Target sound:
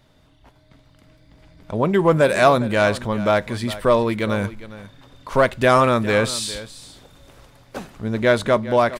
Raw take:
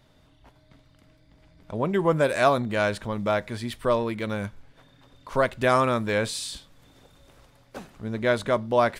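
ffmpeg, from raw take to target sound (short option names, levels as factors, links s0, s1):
-filter_complex "[0:a]dynaudnorm=f=710:g=3:m=1.78,asplit=2[s0][s1];[s1]asoftclip=type=hard:threshold=0.188,volume=0.355[s2];[s0][s2]amix=inputs=2:normalize=0,aecho=1:1:407:0.158"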